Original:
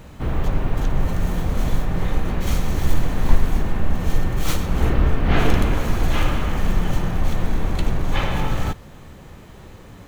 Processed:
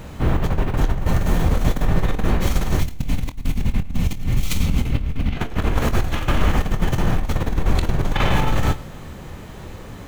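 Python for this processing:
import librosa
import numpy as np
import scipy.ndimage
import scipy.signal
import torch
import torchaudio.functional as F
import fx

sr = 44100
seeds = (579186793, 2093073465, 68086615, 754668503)

y = fx.spec_box(x, sr, start_s=2.8, length_s=2.57, low_hz=280.0, high_hz=2000.0, gain_db=-10)
y = fx.over_compress(y, sr, threshold_db=-19.0, ratio=-0.5)
y = fx.doubler(y, sr, ms=25.0, db=-11.5)
y = fx.echo_feedback(y, sr, ms=106, feedback_pct=39, wet_db=-21.0)
y = y * 10.0 ** (2.0 / 20.0)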